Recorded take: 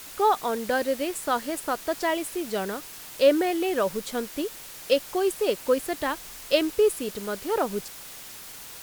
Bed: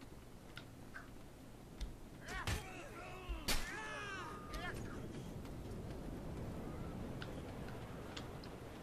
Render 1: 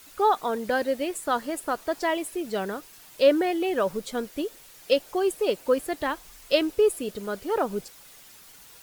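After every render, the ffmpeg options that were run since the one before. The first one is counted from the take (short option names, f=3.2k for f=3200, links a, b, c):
-af "afftdn=nr=9:nf=-42"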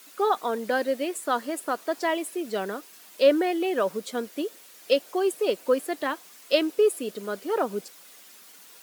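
-af "highpass=f=200:w=0.5412,highpass=f=200:w=1.3066,bandreject=f=860:w=17"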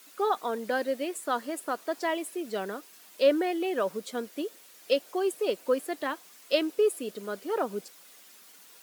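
-af "volume=-3.5dB"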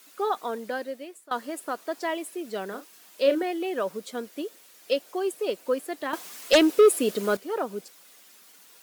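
-filter_complex "[0:a]asettb=1/sr,asplit=3[a][b][c];[a]atrim=end=2.684[d];[b]atrim=start=2.68:end=3.43,asetpts=PTS-STARTPTS,afade=t=in:d=0.004:c=qsin,afade=t=out:st=0.746:d=0.004:c=qsin,asplit=2[e][f];[f]adelay=36,volume=-8.5dB[g];[e][g]amix=inputs=2:normalize=0,atrim=end_sample=33075[h];[c]atrim=start=3.426[i];[d][h]acrossfade=d=0.004:c1=hsin:c2=qsin[j];[j][i]acrossfade=d=0.004:c1=qsin:c2=hsin,asettb=1/sr,asplit=3[k][l][m];[k]atrim=end=6.134[n];[l]atrim=start=6.13:end=7.37,asetpts=PTS-STARTPTS,afade=t=in:d=0.004:c=qsin,afade=t=out:st=1.236:d=0.004:c=qsin,aeval=exprs='0.266*sin(PI/2*2.24*val(0)/0.266)':c=same[o];[m]atrim=start=7.366[p];[n][o]acrossfade=d=0.004:c1=hsin:c2=qsin[q];[q][p]acrossfade=d=0.004:c1=qsin:c2=hsin,asplit=2[r][s];[r]atrim=end=1.31,asetpts=PTS-STARTPTS,afade=t=out:st=0.51:d=0.8:silence=0.105925[t];[s]atrim=start=1.31,asetpts=PTS-STARTPTS,afade=t=in:d=0.004:c=hsin:silence=0.105925[u];[t][u]concat=n=2:v=0:a=1"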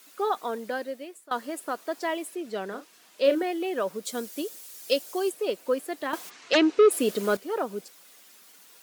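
-filter_complex "[0:a]asettb=1/sr,asplit=3[a][b][c];[a]atrim=end=2.354[d];[b]atrim=start=2.35:end=3.24,asetpts=PTS-STARTPTS,afade=t=in:d=0.004:c=qsin,afade=t=out:st=0.886:d=0.004:c=qsin,highshelf=f=10k:g=-11[e];[c]atrim=start=3.236[f];[d][e]acrossfade=d=0.004:c1=hsin:c2=qsin[g];[g][f]acrossfade=d=0.004:c1=qsin:c2=hsin,asettb=1/sr,asplit=3[h][i][j];[h]atrim=end=4.054[k];[i]atrim=start=4.05:end=5.3,asetpts=PTS-STARTPTS,afade=t=in:d=0.004:c=qsin,afade=t=out:st=1.246:d=0.004:c=qsin,bass=f=250:g=3,treble=f=4k:g=10[l];[j]atrim=start=5.296[m];[k][l]acrossfade=d=0.004:c1=hsin:c2=qsin[n];[n][m]acrossfade=d=0.004:c1=qsin:c2=hsin,asplit=3[o][p][q];[o]afade=t=out:st=6.29:d=0.02[r];[p]highpass=130,equalizer=f=140:t=q:w=4:g=6,equalizer=f=210:t=q:w=4:g=-8,equalizer=f=560:t=q:w=4:g=-7,equalizer=f=3.4k:t=q:w=4:g=-4,equalizer=f=5.1k:t=q:w=4:g=-5,lowpass=f=5.7k:w=0.5412,lowpass=f=5.7k:w=1.3066,afade=t=in:st=6.29:d=0.02,afade=t=out:st=6.9:d=0.02[s];[q]afade=t=in:st=6.9:d=0.02[t];[r][s][t]amix=inputs=3:normalize=0"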